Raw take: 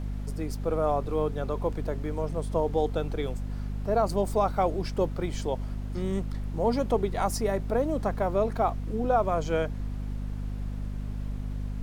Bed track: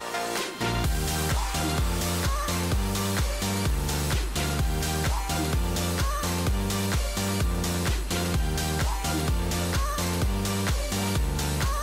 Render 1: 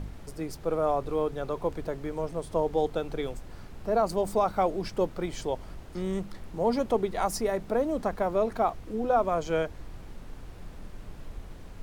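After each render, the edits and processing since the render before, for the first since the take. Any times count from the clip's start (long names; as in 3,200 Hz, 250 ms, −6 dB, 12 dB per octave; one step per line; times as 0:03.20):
hum removal 50 Hz, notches 5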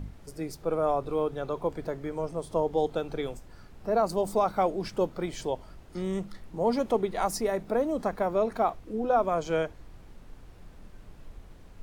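noise reduction from a noise print 6 dB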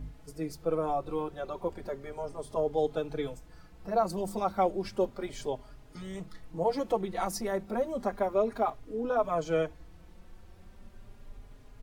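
barber-pole flanger 4.3 ms +0.33 Hz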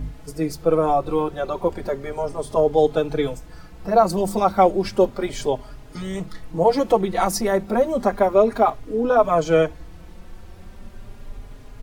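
level +11.5 dB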